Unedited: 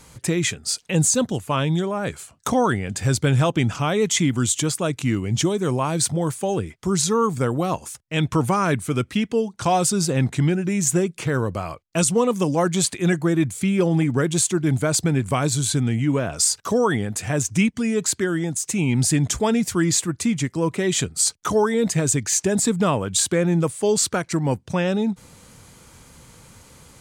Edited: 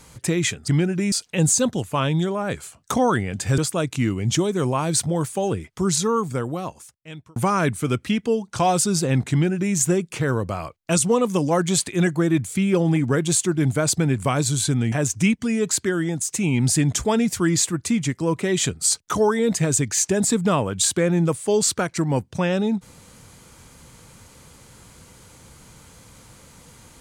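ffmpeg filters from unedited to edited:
-filter_complex "[0:a]asplit=6[a][b][c][d][e][f];[a]atrim=end=0.682[g];[b]atrim=start=10.368:end=10.812[h];[c]atrim=start=0.678:end=3.142[i];[d]atrim=start=4.638:end=8.42,asetpts=PTS-STARTPTS,afade=t=out:st=2.292:d=1.49[j];[e]atrim=start=8.42:end=15.982,asetpts=PTS-STARTPTS,afade=t=in:d=0.004:c=hsin[k];[f]atrim=start=17.268[l];[g][h]acrossfade=d=0.004:c1=hsin:c2=hsin[m];[m][i]acrossfade=d=0.004:c1=hsin:c2=hsin[n];[j][k]concat=n=2:v=0:a=1[o];[n][o]acrossfade=d=0.004:c1=hsin:c2=hsin[p];[p][l]acrossfade=d=0.004:c1=hsin:c2=hsin"

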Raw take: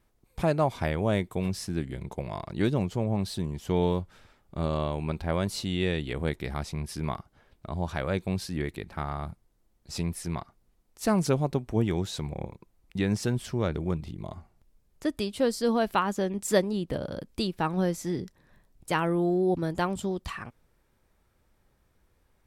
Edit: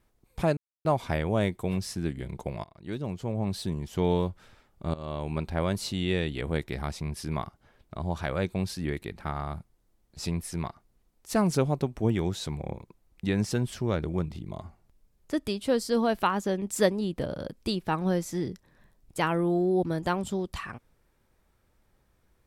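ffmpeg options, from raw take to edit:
-filter_complex "[0:a]asplit=4[a][b][c][d];[a]atrim=end=0.57,asetpts=PTS-STARTPTS,afade=t=out:st=0.566:d=0.004:c=hsin,apad=pad_dur=0.28[e];[b]atrim=start=0.57:end=2.36,asetpts=PTS-STARTPTS,afade=t=in:d=0.004:c=hsin,afade=t=out:st=1.786:d=0.004:c=hsin:silence=0.0707946[f];[c]atrim=start=2.36:end=4.66,asetpts=PTS-STARTPTS,afade=t=in:d=0.97:silence=0.0707946,afade=t=out:st=2.296:d=0.004:c=hsin:silence=0.133352[g];[d]atrim=start=4.66,asetpts=PTS-STARTPTS,afade=t=in:d=0.37:silence=0.133352[h];[e][f][g][h]concat=n=4:v=0:a=1"

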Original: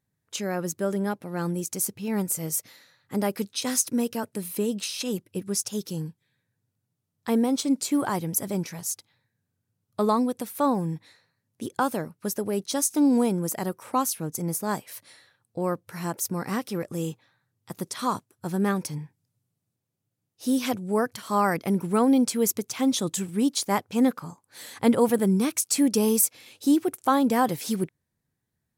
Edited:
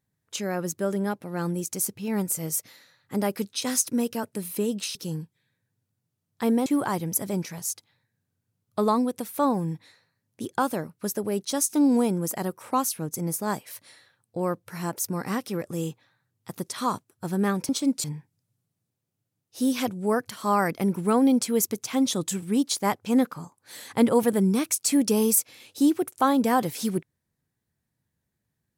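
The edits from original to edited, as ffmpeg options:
-filter_complex "[0:a]asplit=5[a][b][c][d][e];[a]atrim=end=4.952[f];[b]atrim=start=5.808:end=7.522[g];[c]atrim=start=7.868:end=18.902[h];[d]atrim=start=7.518:end=7.872[i];[e]atrim=start=18.898[j];[f][g]acrossfade=d=0.004:c1=hsin:c2=hsin[k];[k][h]acrossfade=d=0.004:c1=hsin:c2=hsin[l];[l][i]acrossfade=d=0.004:c1=hsin:c2=hsin[m];[m][j]acrossfade=d=0.004:c1=hsin:c2=hsin"

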